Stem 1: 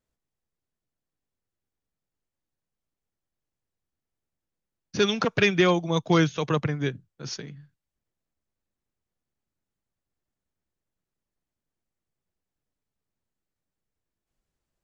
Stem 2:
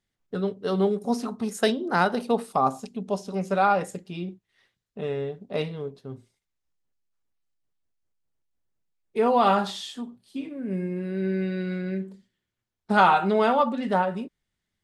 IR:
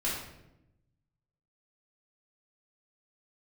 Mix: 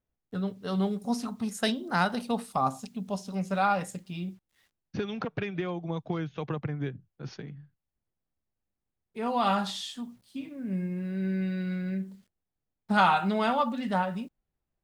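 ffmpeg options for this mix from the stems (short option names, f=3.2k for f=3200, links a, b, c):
-filter_complex "[0:a]lowpass=3k,equalizer=f=770:w=6.3:g=5,acompressor=threshold=-26dB:ratio=10,volume=-5dB,asplit=2[a][b];[1:a]equalizer=f=400:t=o:w=0.92:g=-9.5,acrusher=bits=10:mix=0:aa=0.000001,adynamicequalizer=threshold=0.0141:dfrequency=2100:dqfactor=0.7:tfrequency=2100:tqfactor=0.7:attack=5:release=100:ratio=0.375:range=2:mode=boostabove:tftype=highshelf,volume=-4dB[c];[b]apad=whole_len=654082[d];[c][d]sidechaincompress=threshold=-58dB:ratio=8:attack=6.2:release=1400[e];[a][e]amix=inputs=2:normalize=0,lowshelf=f=330:g=5.5"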